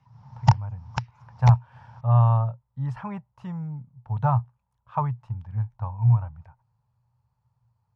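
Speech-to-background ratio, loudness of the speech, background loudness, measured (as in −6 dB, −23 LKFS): 1.0 dB, −25.5 LKFS, −26.5 LKFS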